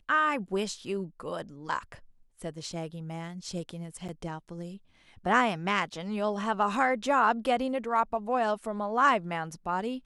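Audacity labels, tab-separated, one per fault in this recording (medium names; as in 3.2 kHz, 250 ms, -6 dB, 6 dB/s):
4.080000	4.090000	dropout 7.1 ms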